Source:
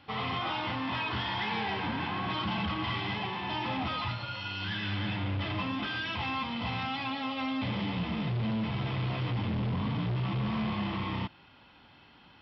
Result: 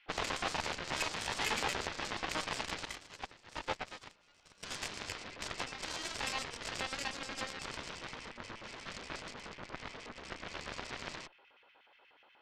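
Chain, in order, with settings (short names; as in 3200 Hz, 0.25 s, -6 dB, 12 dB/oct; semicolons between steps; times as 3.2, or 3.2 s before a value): tone controls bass -12 dB, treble -14 dB; LFO high-pass square 8.3 Hz 470–2200 Hz; added harmonics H 6 -16 dB, 7 -13 dB, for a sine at -19.5 dBFS; 2.85–4.63 upward expander 2.5:1, over -43 dBFS; gain -1.5 dB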